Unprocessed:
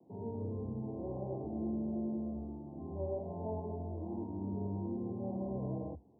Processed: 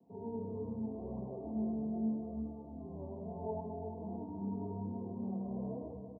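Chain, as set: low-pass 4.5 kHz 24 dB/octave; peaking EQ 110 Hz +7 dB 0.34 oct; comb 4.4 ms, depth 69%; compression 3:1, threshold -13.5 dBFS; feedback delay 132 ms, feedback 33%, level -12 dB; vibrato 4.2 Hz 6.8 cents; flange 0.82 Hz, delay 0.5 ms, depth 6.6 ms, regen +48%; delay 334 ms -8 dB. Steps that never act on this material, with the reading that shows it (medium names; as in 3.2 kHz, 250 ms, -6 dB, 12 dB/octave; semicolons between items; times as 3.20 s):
low-pass 4.5 kHz: input has nothing above 960 Hz; compression, threshold -13.5 dBFS: peak at its input -25.5 dBFS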